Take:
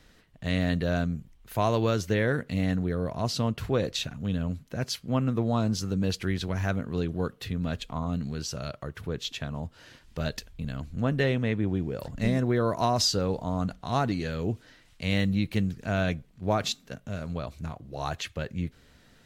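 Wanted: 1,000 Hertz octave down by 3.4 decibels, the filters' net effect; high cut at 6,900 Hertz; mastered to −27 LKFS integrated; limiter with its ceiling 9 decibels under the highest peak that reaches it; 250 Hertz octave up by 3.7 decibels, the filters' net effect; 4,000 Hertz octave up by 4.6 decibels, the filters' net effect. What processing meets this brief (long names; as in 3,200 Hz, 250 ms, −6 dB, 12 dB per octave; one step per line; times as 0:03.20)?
low-pass filter 6,900 Hz
parametric band 250 Hz +5 dB
parametric band 1,000 Hz −5.5 dB
parametric band 4,000 Hz +6.5 dB
level +3.5 dB
brickwall limiter −15.5 dBFS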